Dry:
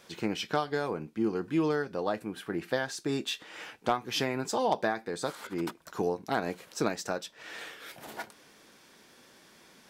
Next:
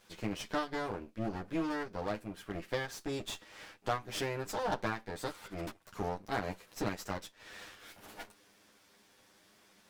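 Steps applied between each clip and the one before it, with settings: minimum comb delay 9.9 ms; gain -5.5 dB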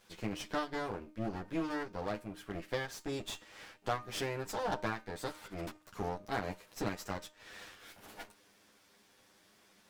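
de-hum 306.2 Hz, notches 27; gain -1 dB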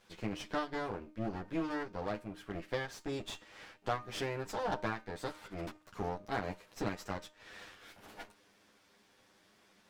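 high shelf 7200 Hz -8.5 dB

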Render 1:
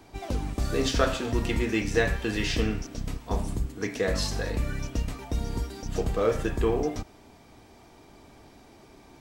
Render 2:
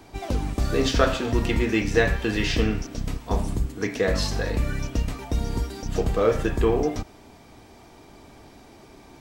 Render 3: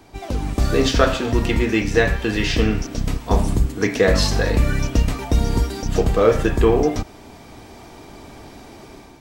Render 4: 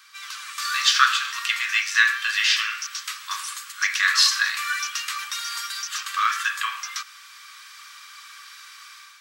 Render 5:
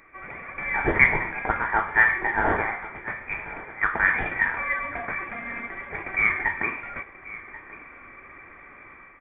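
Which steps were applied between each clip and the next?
dynamic EQ 9300 Hz, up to -5 dB, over -49 dBFS, Q 0.79; gain +4 dB
AGC gain up to 8 dB
rippled Chebyshev high-pass 1100 Hz, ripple 3 dB; gain +6.5 dB
modulation noise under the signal 24 dB; echo 1.085 s -17.5 dB; inverted band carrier 3500 Hz

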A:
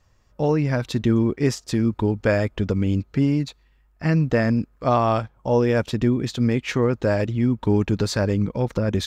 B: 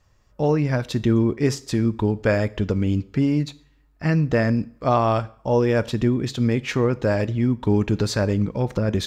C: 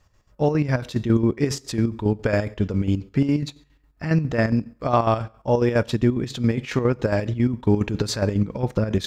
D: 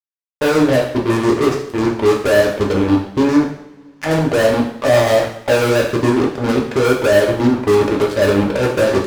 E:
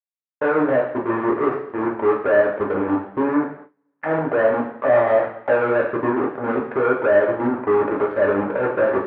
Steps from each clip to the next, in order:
two-slope reverb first 0.48 s, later 1.7 s, from -28 dB, DRR 15 dB
chopper 7.3 Hz, depth 60%, duty 55%; gain +1.5 dB
auto-wah 520–4100 Hz, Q 2.3, down, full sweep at -24.5 dBFS; fuzz box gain 37 dB, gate -42 dBFS; two-slope reverb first 0.63 s, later 2.8 s, from -25 dB, DRR -1 dB; gain -1 dB
LPF 1700 Hz 24 dB/oct; gate with hold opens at -24 dBFS; HPF 590 Hz 6 dB/oct

